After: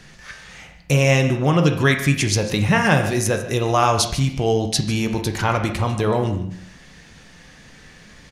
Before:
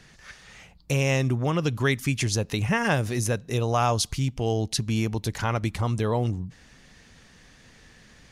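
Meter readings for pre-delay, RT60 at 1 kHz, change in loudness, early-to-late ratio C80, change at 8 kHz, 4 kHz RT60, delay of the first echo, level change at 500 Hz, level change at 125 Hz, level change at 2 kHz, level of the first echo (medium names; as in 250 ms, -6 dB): 6 ms, 0.65 s, +6.5 dB, 10.0 dB, +6.0 dB, 0.60 s, 148 ms, +7.0 dB, +5.5 dB, +7.5 dB, -15.0 dB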